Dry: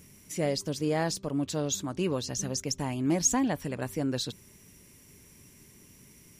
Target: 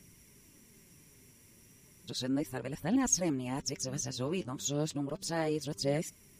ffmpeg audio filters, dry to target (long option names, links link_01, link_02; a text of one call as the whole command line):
ffmpeg -i in.wav -af "areverse,flanger=delay=0:depth=9.4:regen=54:speed=0.34:shape=triangular" out.wav